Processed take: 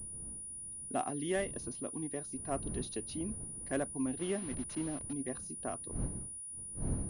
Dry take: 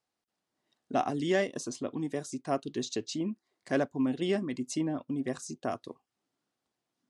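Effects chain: 4.19–5.13 level-crossing sampler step -38 dBFS; wind noise 170 Hz -39 dBFS; pulse-width modulation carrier 9700 Hz; gain -6.5 dB

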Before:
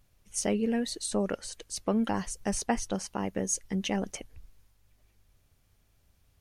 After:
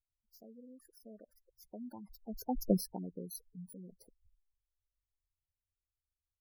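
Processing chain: FFT order left unsorted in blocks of 16 samples; Doppler pass-by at 2.72, 26 m/s, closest 1.7 m; spectral gate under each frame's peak -10 dB strong; gain +5.5 dB

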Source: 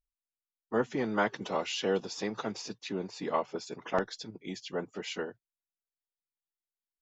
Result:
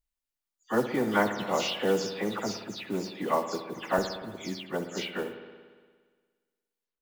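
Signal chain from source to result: spectral delay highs early, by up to 0.159 s; modulation noise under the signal 23 dB; spring tank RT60 1.6 s, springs 58 ms, chirp 55 ms, DRR 8.5 dB; gain +3.5 dB

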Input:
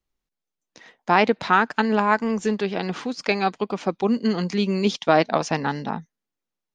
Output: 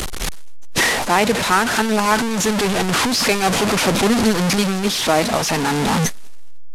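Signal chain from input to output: delta modulation 64 kbps, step -15.5 dBFS; AGC gain up to 14 dB; core saturation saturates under 120 Hz; gain -1 dB

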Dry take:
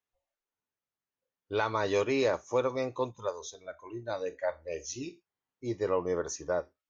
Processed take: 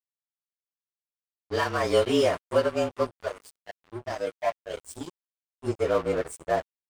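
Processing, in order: inharmonic rescaling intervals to 110%; notch 1300 Hz, Q 27; crossover distortion -43.5 dBFS; gain +8.5 dB

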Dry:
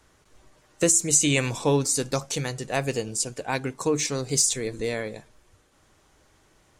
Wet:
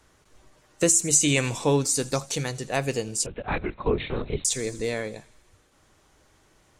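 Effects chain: thin delay 81 ms, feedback 68%, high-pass 2900 Hz, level -19 dB; 3.26–4.45 LPC vocoder at 8 kHz whisper

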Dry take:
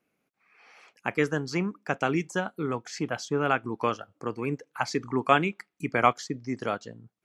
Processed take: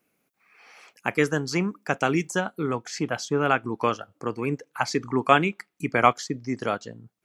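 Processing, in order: high shelf 7700 Hz +11 dB, from 2.41 s +4 dB; gain +3 dB

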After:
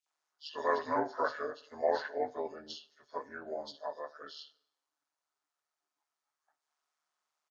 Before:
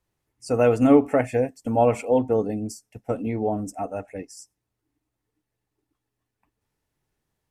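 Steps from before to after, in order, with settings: inharmonic rescaling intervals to 83%; resonant high-pass 990 Hz, resonance Q 1.6; bands offset in time highs, lows 60 ms, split 2900 Hz; plate-style reverb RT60 0.86 s, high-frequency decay 0.85×, DRR 18.5 dB; AM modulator 150 Hz, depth 35%

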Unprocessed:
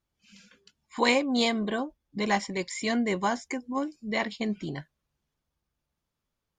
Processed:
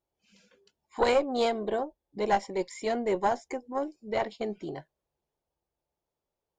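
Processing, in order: band shelf 560 Hz +11.5 dB; tube stage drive 7 dB, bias 0.55; gain -5.5 dB

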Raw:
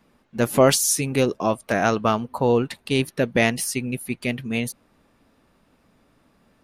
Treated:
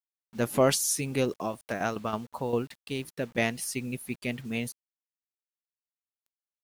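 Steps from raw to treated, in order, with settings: 1.41–3.61 tremolo saw down 8.5 Hz -> 2.4 Hz, depth 65%; requantised 8-bit, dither none; gain -7 dB

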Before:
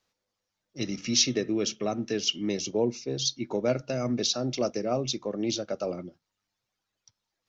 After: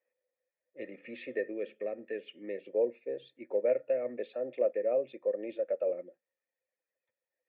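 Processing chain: HPF 330 Hz 12 dB/oct; 1.51–2.67 dynamic EQ 840 Hz, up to -5 dB, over -41 dBFS, Q 0.88; vocal tract filter e; gain +7 dB

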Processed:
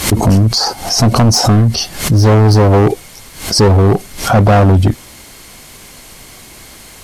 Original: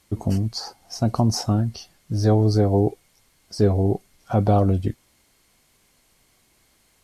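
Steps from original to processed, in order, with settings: overloaded stage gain 20.5 dB; maximiser +30 dB; backwards sustainer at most 110 dB/s; gain -4.5 dB

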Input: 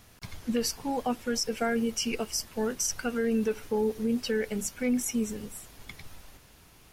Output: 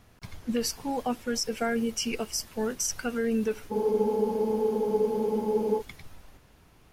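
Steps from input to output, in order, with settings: spectral freeze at 3.74, 2.06 s; mismatched tape noise reduction decoder only

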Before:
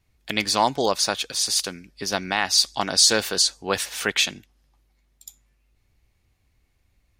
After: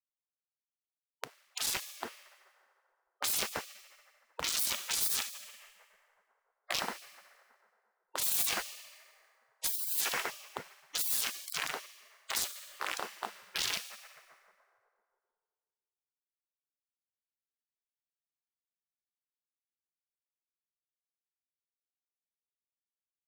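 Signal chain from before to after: chorus voices 2, 0.41 Hz, delay 14 ms, depth 1.4 ms; on a send: echo with dull and thin repeats by turns 0.274 s, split 1300 Hz, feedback 78%, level -10 dB; on the sum: dynamic EQ 1900 Hz, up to -4 dB, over -41 dBFS, Q 3.5; wide varispeed 0.309×; in parallel at +1 dB: limiter -18.5 dBFS, peak gain reduction 11 dB; on the sum: weighting filter D; Schmitt trigger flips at -8.5 dBFS; FDN reverb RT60 1.7 s, low-frequency decay 1.5×, high-frequency decay 0.7×, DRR 12.5 dB; spectral gate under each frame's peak -30 dB weak; wavefolder -27 dBFS; gain +8.5 dB

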